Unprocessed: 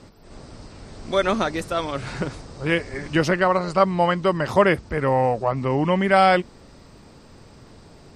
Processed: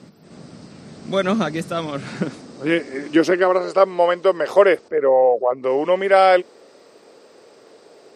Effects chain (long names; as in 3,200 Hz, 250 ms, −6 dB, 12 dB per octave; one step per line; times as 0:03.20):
0:04.88–0:05.64: spectral envelope exaggerated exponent 1.5
high-pass filter sweep 170 Hz → 450 Hz, 0:01.81–0:03.92
parametric band 940 Hz −4 dB 0.43 octaves